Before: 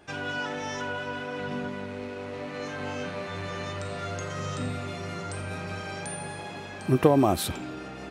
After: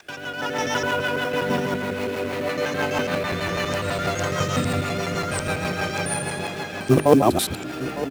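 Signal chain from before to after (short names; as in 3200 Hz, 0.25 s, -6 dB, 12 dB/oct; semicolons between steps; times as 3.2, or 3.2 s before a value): local time reversal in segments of 83 ms; companded quantiser 6-bit; low shelf 98 Hz -7.5 dB; notches 50/100/150/200/250/300/350/400 Hz; rotary speaker horn 6.3 Hz; AGC gain up to 13.5 dB; echo 0.906 s -14.5 dB; mismatched tape noise reduction encoder only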